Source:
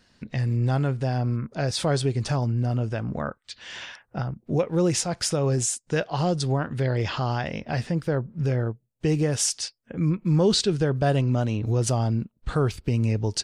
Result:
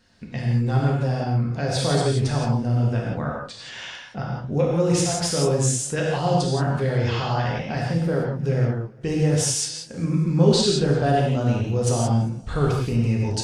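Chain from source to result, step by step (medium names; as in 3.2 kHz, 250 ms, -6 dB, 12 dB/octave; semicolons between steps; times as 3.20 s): gated-style reverb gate 200 ms flat, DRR -3.5 dB; modulated delay 200 ms, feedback 51%, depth 169 cents, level -23 dB; trim -2.5 dB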